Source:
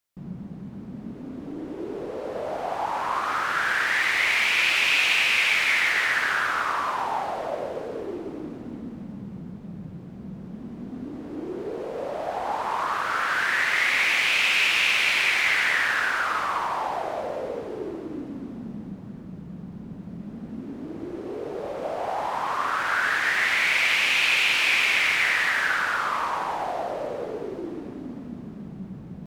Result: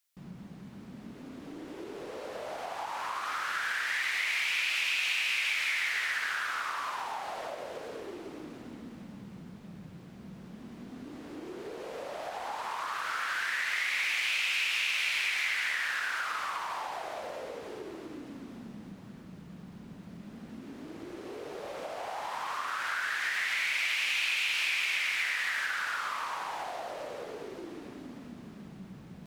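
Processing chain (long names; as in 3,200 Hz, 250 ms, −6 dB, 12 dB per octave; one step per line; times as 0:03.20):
downward compressor, threshold −30 dBFS, peak gain reduction 12 dB
tilt shelving filter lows −7 dB, about 1,100 Hz
level −2.5 dB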